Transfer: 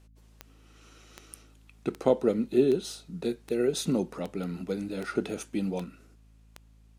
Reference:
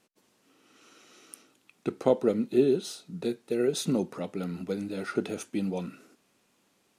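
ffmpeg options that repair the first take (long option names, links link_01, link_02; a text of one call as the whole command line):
ffmpeg -i in.wav -af "adeclick=threshold=4,bandreject=frequency=54.1:width_type=h:width=4,bandreject=frequency=108.2:width_type=h:width=4,bandreject=frequency=162.3:width_type=h:width=4,bandreject=frequency=216.4:width_type=h:width=4,bandreject=frequency=270.5:width_type=h:width=4,asetnsamples=nb_out_samples=441:pad=0,asendcmd='5.84 volume volume 5dB',volume=0dB" out.wav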